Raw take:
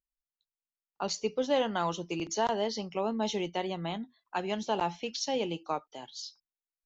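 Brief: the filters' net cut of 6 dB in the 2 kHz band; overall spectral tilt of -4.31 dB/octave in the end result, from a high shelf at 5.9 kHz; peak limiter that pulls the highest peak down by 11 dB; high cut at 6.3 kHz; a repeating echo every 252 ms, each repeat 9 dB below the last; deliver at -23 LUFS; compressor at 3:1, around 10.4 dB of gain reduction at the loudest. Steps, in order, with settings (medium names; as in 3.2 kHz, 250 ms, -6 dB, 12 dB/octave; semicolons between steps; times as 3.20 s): low-pass 6.3 kHz; peaking EQ 2 kHz -9 dB; treble shelf 5.9 kHz +4 dB; compression 3:1, threshold -38 dBFS; peak limiter -36 dBFS; feedback delay 252 ms, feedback 35%, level -9 dB; trim +22 dB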